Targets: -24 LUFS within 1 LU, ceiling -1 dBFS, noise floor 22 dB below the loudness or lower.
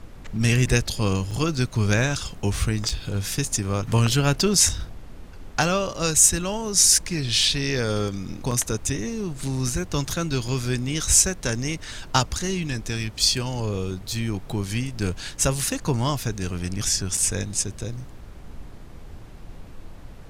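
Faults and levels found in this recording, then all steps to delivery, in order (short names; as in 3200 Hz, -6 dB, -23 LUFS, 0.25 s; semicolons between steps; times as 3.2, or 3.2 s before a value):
dropouts 6; longest dropout 4.2 ms; noise floor -41 dBFS; noise floor target -45 dBFS; loudness -23.0 LUFS; peak -1.0 dBFS; loudness target -24.0 LUFS
-> interpolate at 1.31/2.89/4.69/8.51/10.48/17.17, 4.2 ms; noise print and reduce 6 dB; gain -1 dB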